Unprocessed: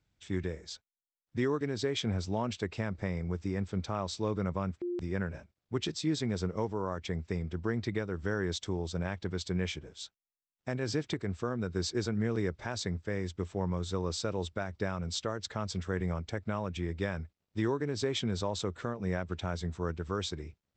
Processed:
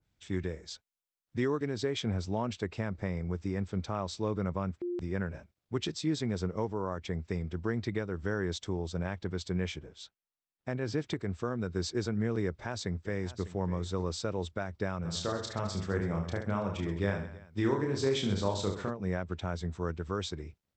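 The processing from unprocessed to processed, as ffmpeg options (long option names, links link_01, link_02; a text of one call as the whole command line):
ffmpeg -i in.wav -filter_complex "[0:a]asettb=1/sr,asplit=3[link_01][link_02][link_03];[link_01]atrim=end=9.864[link_04];[link_02]atrim=start=9.86:end=10.98,asetpts=PTS-STARTPTS,afade=type=in:duration=0.004:curve=qsin,afade=type=out:start_time=1.116:duration=0.004:curve=qsin,lowpass=frequency=3300:poles=1[link_05];[link_03]atrim=start=10.976[link_06];[link_04][link_05]acrossfade=duration=0.004:curve1=hsin:curve2=qsin[link_07];[link_07][link_06]acrossfade=duration=0.004:curve1=qsin:curve2=hsin,asplit=2[link_08][link_09];[link_09]afade=type=in:start_time=12.45:duration=0.01,afade=type=out:start_time=13.49:duration=0.01,aecho=0:1:600|1200:0.177828|0.0266742[link_10];[link_08][link_10]amix=inputs=2:normalize=0,asplit=3[link_11][link_12][link_13];[link_11]afade=type=out:start_time=15.04:duration=0.02[link_14];[link_12]aecho=1:1:30|72|130.8|213.1|328.4:0.631|0.398|0.251|0.158|0.1,afade=type=in:start_time=15.04:duration=0.02,afade=type=out:start_time=18.89:duration=0.02[link_15];[link_13]afade=type=in:start_time=18.89:duration=0.02[link_16];[link_14][link_15][link_16]amix=inputs=3:normalize=0,adynamicequalizer=threshold=0.00355:dfrequency=1900:dqfactor=0.7:tfrequency=1900:tqfactor=0.7:attack=5:release=100:ratio=0.375:range=1.5:mode=cutabove:tftype=highshelf" out.wav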